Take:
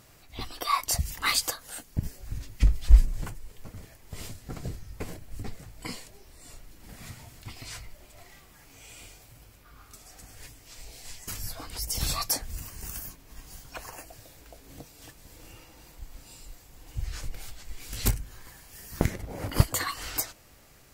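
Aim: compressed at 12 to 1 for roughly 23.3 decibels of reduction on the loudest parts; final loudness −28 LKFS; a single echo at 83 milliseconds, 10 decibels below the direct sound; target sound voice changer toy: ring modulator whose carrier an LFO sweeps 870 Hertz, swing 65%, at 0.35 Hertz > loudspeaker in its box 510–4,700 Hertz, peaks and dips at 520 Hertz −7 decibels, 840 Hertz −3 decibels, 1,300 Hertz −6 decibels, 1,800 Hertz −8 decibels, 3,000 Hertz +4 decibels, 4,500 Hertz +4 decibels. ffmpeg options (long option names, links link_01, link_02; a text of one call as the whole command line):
ffmpeg -i in.wav -af "acompressor=threshold=-32dB:ratio=12,aecho=1:1:83:0.316,aeval=exprs='val(0)*sin(2*PI*870*n/s+870*0.65/0.35*sin(2*PI*0.35*n/s))':channel_layout=same,highpass=510,equalizer=frequency=520:width_type=q:width=4:gain=-7,equalizer=frequency=840:width_type=q:width=4:gain=-3,equalizer=frequency=1300:width_type=q:width=4:gain=-6,equalizer=frequency=1800:width_type=q:width=4:gain=-8,equalizer=frequency=3000:width_type=q:width=4:gain=4,equalizer=frequency=4500:width_type=q:width=4:gain=4,lowpass=frequency=4700:width=0.5412,lowpass=frequency=4700:width=1.3066,volume=18.5dB" out.wav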